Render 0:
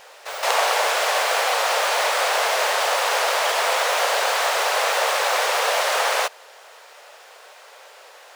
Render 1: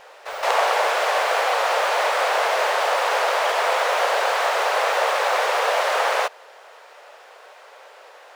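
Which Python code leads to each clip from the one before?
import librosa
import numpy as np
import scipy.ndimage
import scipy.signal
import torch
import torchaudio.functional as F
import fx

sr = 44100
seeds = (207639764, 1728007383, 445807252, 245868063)

y = fx.high_shelf(x, sr, hz=3400.0, db=-11.5)
y = y * 10.0 ** (2.0 / 20.0)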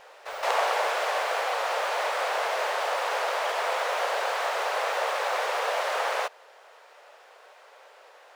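y = fx.rider(x, sr, range_db=4, speed_s=2.0)
y = y * 10.0 ** (-7.0 / 20.0)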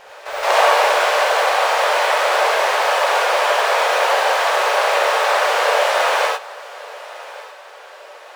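y = fx.echo_feedback(x, sr, ms=1150, feedback_pct=31, wet_db=-19)
y = fx.rev_gated(y, sr, seeds[0], gate_ms=120, shape='rising', drr_db=-2.5)
y = y * 10.0 ** (7.0 / 20.0)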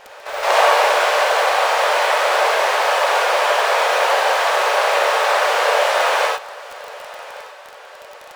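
y = fx.dmg_crackle(x, sr, seeds[1], per_s=22.0, level_db=-24.0)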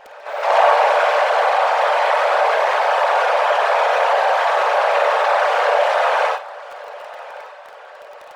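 y = fx.envelope_sharpen(x, sr, power=1.5)
y = fx.room_flutter(y, sr, wall_m=8.9, rt60_s=0.23)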